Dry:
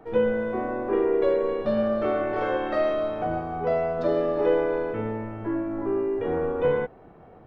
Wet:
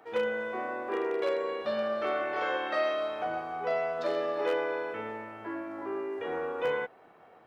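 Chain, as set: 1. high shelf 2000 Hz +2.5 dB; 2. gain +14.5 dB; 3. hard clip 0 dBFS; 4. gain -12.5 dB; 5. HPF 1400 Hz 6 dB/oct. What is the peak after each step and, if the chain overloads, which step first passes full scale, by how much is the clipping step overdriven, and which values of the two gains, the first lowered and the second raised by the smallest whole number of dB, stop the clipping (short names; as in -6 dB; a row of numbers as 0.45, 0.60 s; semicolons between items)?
-10.0, +4.5, 0.0, -12.5, -17.5 dBFS; step 2, 4.5 dB; step 2 +9.5 dB, step 4 -7.5 dB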